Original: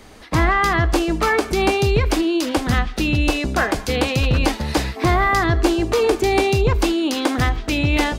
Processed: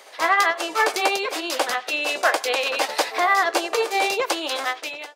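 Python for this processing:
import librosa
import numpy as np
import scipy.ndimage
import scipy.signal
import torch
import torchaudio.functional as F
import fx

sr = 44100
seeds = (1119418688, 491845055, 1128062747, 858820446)

y = fx.fade_out_tail(x, sr, length_s=1.0)
y = scipy.signal.sosfilt(scipy.signal.cheby1(3, 1.0, 530.0, 'highpass', fs=sr, output='sos'), y)
y = fx.stretch_grains(y, sr, factor=0.63, grain_ms=162.0)
y = y * librosa.db_to_amplitude(2.5)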